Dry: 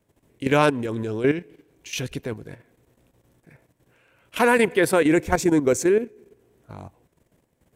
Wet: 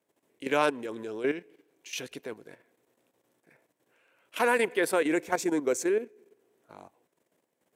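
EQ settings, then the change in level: high-pass 320 Hz 12 dB/octave; -6.0 dB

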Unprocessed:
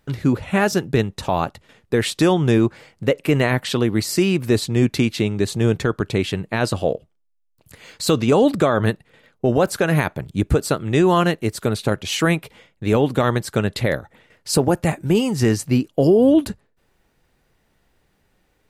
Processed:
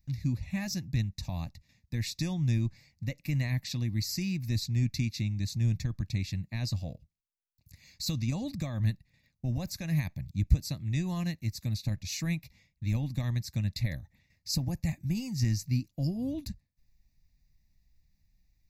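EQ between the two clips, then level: amplifier tone stack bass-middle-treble 10-0-1; treble shelf 2.4 kHz +10 dB; static phaser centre 2.1 kHz, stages 8; +6.5 dB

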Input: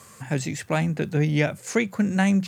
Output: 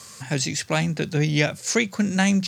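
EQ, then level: peaking EQ 4.9 kHz +13 dB 1.4 oct; 0.0 dB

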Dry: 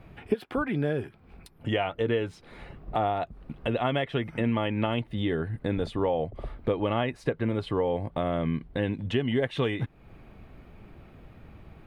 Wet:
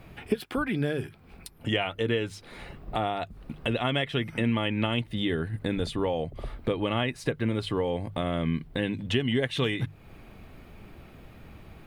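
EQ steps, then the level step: hum notches 50/100/150 Hz; dynamic bell 720 Hz, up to -5 dB, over -40 dBFS, Q 0.76; treble shelf 3.6 kHz +10.5 dB; +1.5 dB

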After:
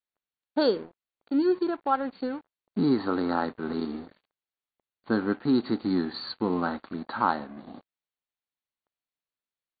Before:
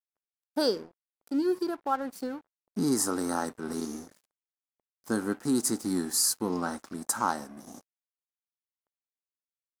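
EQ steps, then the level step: brick-wall FIR low-pass 4.6 kHz; +3.5 dB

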